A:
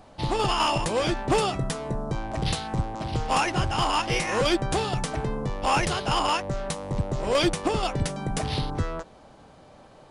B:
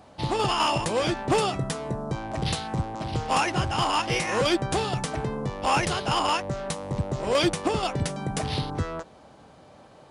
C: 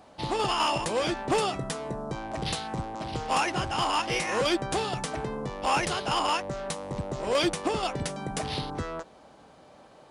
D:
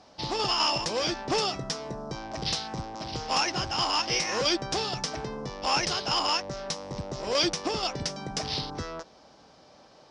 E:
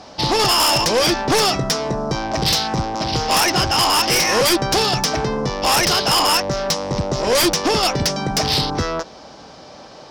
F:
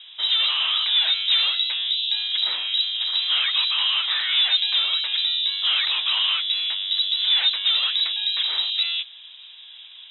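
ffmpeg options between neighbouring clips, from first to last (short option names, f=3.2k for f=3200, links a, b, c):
-af "highpass=62"
-filter_complex "[0:a]equalizer=f=100:w=0.89:g=-7,asplit=2[a][b];[b]asoftclip=type=tanh:threshold=-22dB,volume=-11dB[c];[a][c]amix=inputs=2:normalize=0,volume=-3.5dB"
-af "lowpass=f=5.4k:t=q:w=4.9,volume=-2.5dB"
-af "aeval=exprs='0.251*sin(PI/2*3.55*val(0)/0.251)':c=same"
-af "acrusher=bits=7:mix=0:aa=0.000001,lowpass=f=3.4k:t=q:w=0.5098,lowpass=f=3.4k:t=q:w=0.6013,lowpass=f=3.4k:t=q:w=0.9,lowpass=f=3.4k:t=q:w=2.563,afreqshift=-4000,aderivative,volume=4dB"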